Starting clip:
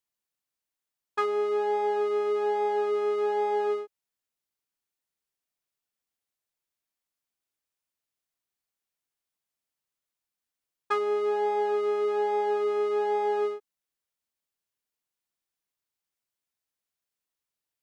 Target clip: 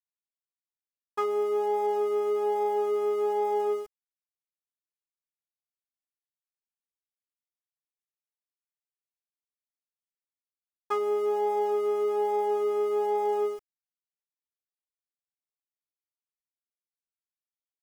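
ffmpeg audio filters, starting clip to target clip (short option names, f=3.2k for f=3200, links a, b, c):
-af "aeval=exprs='val(0)*gte(abs(val(0)),0.00596)':c=same,equalizer=f=1.6k:t=o:w=0.33:g=-11,equalizer=f=2.5k:t=o:w=0.33:g=-6,equalizer=f=4k:t=o:w=0.33:g=-11"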